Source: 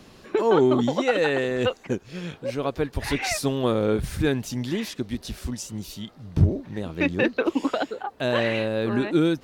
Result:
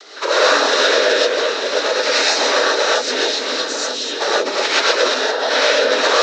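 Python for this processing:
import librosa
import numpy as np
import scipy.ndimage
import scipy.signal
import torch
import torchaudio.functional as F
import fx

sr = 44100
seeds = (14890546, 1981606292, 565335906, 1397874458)

y = fx.reverse_delay(x, sr, ms=264, wet_db=-7)
y = fx.peak_eq(y, sr, hz=800.0, db=-5.5, octaves=2.4)
y = fx.leveller(y, sr, passes=3)
y = (np.mod(10.0 ** (11.5 / 20.0) * y + 1.0, 2.0) - 1.0) / 10.0 ** (11.5 / 20.0)
y = fx.stretch_vocoder_free(y, sr, factor=0.66)
y = fx.noise_vocoder(y, sr, seeds[0], bands=12)
y = fx.cabinet(y, sr, low_hz=450.0, low_slope=24, high_hz=6200.0, hz=(470.0, 780.0, 1500.0, 2700.0, 4000.0, 5900.0), db=(5, -3, 6, -3, 7, 4))
y = y + 10.0 ** (-12.0 / 20.0) * np.pad(y, (int(934 * sr / 1000.0), 0))[:len(y)]
y = fx.rev_gated(y, sr, seeds[1], gate_ms=150, shape='rising', drr_db=-6.5)
y = fx.band_squash(y, sr, depth_pct=40)
y = y * librosa.db_to_amplitude(-1.0)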